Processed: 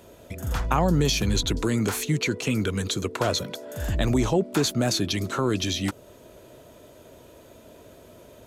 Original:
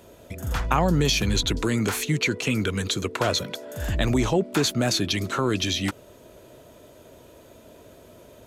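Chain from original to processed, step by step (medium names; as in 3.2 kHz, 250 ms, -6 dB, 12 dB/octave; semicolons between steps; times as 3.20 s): dynamic bell 2.3 kHz, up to -4 dB, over -41 dBFS, Q 0.76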